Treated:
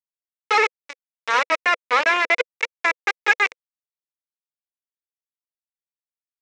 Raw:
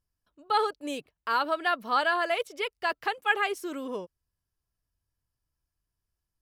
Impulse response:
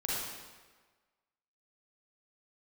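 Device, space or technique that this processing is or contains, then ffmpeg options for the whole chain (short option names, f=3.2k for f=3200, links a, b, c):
hand-held game console: -filter_complex "[0:a]acrusher=bits=3:mix=0:aa=0.000001,highpass=480,equalizer=f=500:t=q:w=4:g=6,equalizer=f=750:t=q:w=4:g=-8,equalizer=f=1.4k:t=q:w=4:g=-3,equalizer=f=2.2k:t=q:w=4:g=8,equalizer=f=3.2k:t=q:w=4:g=-8,equalizer=f=4.5k:t=q:w=4:g=-9,lowpass=f=4.8k:w=0.5412,lowpass=f=4.8k:w=1.3066,asettb=1/sr,asplit=3[a][b][c];[a]atrim=end=1.604[d];[b]atrim=start=1.6:end=2.51,asetpts=PTS-STARTPTS,afade=t=in:d=0.004:c=qsin,afade=t=out:st=0.906:d=0.004:c=qsin,highshelf=f=5.7k:g=-4.5[e];[c]atrim=start=2.506[f];[d][e]acrossfade=d=0.004:c1=hsin:c2=qsin[g];[g][f]acrossfade=d=0.004:c1=qsin:c2=hsin,volume=8dB"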